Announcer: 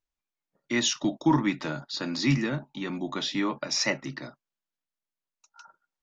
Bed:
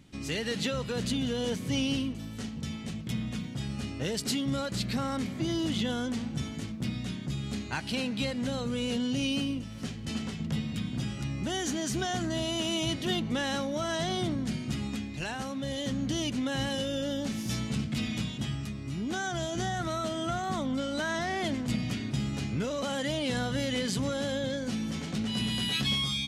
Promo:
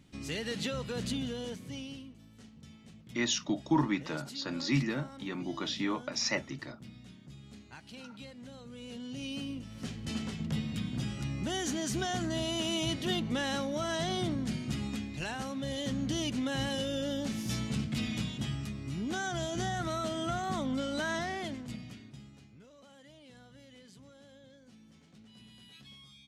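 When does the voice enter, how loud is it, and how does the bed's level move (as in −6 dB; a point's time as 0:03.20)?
2.45 s, −5.0 dB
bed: 0:01.15 −4 dB
0:02.04 −16.5 dB
0:08.65 −16.5 dB
0:09.96 −2 dB
0:21.15 −2 dB
0:22.54 −25 dB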